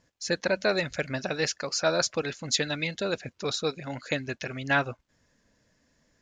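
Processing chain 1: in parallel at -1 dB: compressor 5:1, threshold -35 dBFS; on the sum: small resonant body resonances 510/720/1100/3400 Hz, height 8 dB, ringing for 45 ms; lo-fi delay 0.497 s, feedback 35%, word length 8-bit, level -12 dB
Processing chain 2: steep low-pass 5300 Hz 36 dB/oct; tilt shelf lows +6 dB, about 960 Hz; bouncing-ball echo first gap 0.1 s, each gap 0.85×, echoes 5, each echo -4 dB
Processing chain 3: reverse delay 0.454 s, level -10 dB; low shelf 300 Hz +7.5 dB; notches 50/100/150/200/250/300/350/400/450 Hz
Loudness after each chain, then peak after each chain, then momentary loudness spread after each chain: -25.0, -26.0, -27.5 LUFS; -7.0, -10.0, -10.0 dBFS; 12, 6, 9 LU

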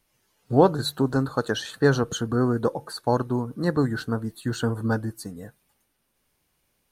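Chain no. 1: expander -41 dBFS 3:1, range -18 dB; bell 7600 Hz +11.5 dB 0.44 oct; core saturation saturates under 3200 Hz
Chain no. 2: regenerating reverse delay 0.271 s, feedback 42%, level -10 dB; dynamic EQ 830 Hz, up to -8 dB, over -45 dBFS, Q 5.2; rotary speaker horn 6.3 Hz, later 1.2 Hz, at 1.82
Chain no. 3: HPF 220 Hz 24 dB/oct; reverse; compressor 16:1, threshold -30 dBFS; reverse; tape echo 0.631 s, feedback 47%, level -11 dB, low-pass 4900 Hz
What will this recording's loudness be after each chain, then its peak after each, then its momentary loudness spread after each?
-30.0, -26.0, -36.0 LUFS; -5.0, -5.5, -19.0 dBFS; 8, 9, 14 LU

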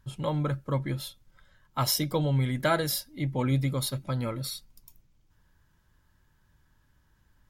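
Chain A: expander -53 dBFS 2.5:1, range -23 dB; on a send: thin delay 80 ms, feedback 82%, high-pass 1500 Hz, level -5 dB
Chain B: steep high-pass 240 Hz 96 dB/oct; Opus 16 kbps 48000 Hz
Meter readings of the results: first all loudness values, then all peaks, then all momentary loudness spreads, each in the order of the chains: -28.5, -32.5 LUFS; -12.0, -13.0 dBFS; 17, 11 LU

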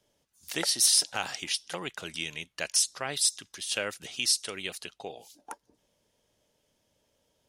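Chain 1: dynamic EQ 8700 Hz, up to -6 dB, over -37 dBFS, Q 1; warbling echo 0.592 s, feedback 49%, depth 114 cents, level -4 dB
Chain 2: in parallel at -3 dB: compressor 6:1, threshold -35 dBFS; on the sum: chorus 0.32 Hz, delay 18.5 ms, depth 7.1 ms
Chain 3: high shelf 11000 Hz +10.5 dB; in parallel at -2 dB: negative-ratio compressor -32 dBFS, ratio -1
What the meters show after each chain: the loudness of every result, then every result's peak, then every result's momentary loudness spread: -29.5, -29.5, -23.5 LUFS; -14.0, -12.0, -7.5 dBFS; 17, 18, 19 LU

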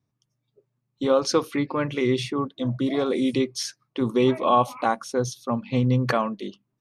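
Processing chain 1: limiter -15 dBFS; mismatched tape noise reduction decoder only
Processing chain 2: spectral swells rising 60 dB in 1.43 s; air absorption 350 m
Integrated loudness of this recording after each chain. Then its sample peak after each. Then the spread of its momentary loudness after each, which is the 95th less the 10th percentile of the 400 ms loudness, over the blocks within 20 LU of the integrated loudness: -26.5, -23.0 LUFS; -15.0, -6.5 dBFS; 7, 10 LU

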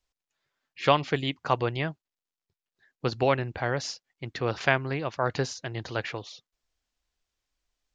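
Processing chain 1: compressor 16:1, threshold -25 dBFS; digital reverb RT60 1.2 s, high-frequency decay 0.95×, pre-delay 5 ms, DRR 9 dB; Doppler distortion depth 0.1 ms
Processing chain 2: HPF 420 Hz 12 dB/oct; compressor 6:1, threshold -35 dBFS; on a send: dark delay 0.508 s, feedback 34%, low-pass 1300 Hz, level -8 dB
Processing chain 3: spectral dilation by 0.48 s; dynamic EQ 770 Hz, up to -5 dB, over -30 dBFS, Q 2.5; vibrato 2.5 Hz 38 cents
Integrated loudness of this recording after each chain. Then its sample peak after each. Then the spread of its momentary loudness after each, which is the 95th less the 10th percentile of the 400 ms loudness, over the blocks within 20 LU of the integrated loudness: -33.0, -40.5, -20.5 LUFS; -10.5, -16.0, -2.0 dBFS; 8, 16, 11 LU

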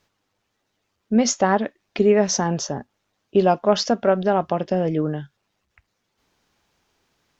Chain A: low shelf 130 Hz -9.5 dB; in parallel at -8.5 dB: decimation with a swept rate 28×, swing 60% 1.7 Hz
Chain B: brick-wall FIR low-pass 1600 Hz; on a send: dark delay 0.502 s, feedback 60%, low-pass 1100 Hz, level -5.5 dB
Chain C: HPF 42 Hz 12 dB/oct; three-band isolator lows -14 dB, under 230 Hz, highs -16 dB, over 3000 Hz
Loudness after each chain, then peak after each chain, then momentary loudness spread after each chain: -20.0, -21.0, -22.5 LUFS; -2.0, -4.0, -5.5 dBFS; 10, 17, 12 LU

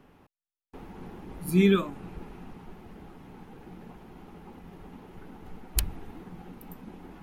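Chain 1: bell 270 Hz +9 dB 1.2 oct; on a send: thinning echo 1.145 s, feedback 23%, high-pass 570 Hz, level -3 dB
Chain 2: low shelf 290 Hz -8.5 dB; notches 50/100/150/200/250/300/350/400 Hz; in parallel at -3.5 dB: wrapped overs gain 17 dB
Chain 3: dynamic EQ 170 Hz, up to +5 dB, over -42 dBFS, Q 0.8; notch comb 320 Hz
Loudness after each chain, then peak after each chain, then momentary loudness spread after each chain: -24.0, -29.0, -23.5 LUFS; -5.0, -7.0, -8.0 dBFS; 24, 23, 22 LU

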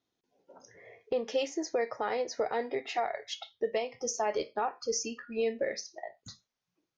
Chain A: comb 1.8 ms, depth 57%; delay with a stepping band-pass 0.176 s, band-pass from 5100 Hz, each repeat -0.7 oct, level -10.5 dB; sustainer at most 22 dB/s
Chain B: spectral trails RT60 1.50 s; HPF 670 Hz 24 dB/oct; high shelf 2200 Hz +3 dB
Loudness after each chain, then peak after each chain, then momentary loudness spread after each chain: -27.5, -30.5 LUFS; -12.5, -16.0 dBFS; 9, 15 LU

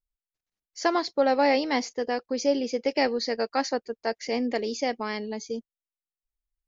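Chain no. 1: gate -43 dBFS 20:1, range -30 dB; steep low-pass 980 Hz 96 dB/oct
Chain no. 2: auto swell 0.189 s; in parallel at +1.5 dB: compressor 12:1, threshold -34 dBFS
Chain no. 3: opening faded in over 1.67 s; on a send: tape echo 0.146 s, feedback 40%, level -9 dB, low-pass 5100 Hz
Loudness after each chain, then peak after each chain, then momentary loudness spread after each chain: -28.0, -27.5, -27.5 LUFS; -12.5, -9.0, -10.0 dBFS; 10, 11, 9 LU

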